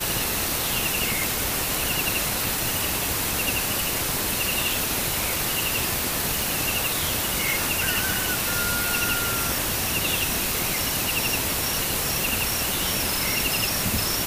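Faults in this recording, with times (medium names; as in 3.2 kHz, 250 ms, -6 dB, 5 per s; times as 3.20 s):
6.42 s: pop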